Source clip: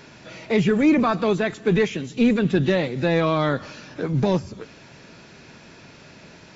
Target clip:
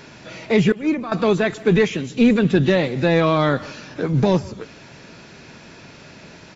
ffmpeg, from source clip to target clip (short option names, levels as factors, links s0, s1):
-filter_complex "[0:a]asettb=1/sr,asplit=3[s0][s1][s2];[s0]atrim=end=0.724[s3];[s1]atrim=start=0.72:end=1.12,asetpts=PTS-STARTPTS,afade=t=in:d=0.004:c=qsin,afade=t=out:st=0.396:d=0.004:c=qsin,agate=range=0.0224:threshold=0.355:ratio=3:detection=peak[s4];[s2]atrim=start=1.116[s5];[s3][s4]acrossfade=d=0.004:c1=hsin:c2=qsin[s6];[s6][s5]acrossfade=d=0.004:c1=qsin:c2=hsin,asplit=2[s7][s8];[s8]adelay=150,highpass=300,lowpass=3400,asoftclip=type=hard:threshold=0.119,volume=0.1[s9];[s7][s9]amix=inputs=2:normalize=0,volume=1.5"